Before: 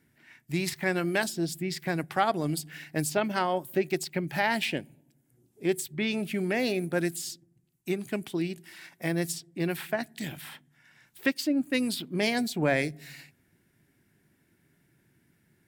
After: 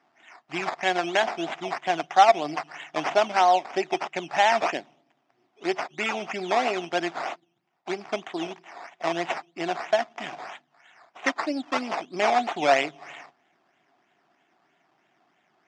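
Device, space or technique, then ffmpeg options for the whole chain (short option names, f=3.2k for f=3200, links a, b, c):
circuit-bent sampling toy: -af "acrusher=samples=12:mix=1:aa=0.000001:lfo=1:lforange=7.2:lforate=3.1,highpass=480,equalizer=f=500:t=q:w=4:g=-7,equalizer=f=720:t=q:w=4:g=10,equalizer=f=1.6k:t=q:w=4:g=-3,equalizer=f=4.2k:t=q:w=4:g=-8,lowpass=f=5.4k:w=0.5412,lowpass=f=5.4k:w=1.3066,volume=6dB"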